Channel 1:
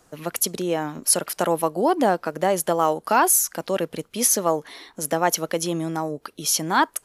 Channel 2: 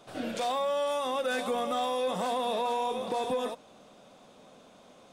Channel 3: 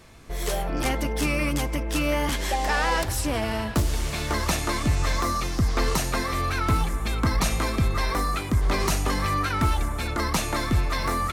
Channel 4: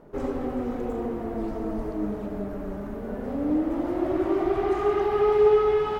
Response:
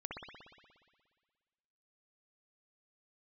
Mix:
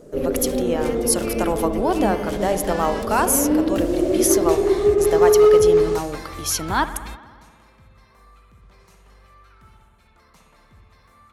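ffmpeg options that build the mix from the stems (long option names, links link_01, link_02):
-filter_complex "[0:a]volume=-3.5dB,asplit=3[link_01][link_02][link_03];[link_02]volume=-7.5dB[link_04];[1:a]adelay=550,volume=-15dB[link_05];[2:a]equalizer=frequency=290:width_type=o:width=0.3:gain=-12,volume=-9dB,asplit=2[link_06][link_07];[link_07]volume=-19.5dB[link_08];[3:a]lowshelf=frequency=700:width_type=q:width=3:gain=8.5,asoftclip=type=hard:threshold=-4dB,volume=-5dB[link_09];[link_03]apad=whole_len=499248[link_10];[link_06][link_10]sidechaingate=range=-29dB:threshold=-53dB:ratio=16:detection=peak[link_11];[4:a]atrim=start_sample=2205[link_12];[link_04][link_08]amix=inputs=2:normalize=0[link_13];[link_13][link_12]afir=irnorm=-1:irlink=0[link_14];[link_01][link_05][link_11][link_09][link_14]amix=inputs=5:normalize=0"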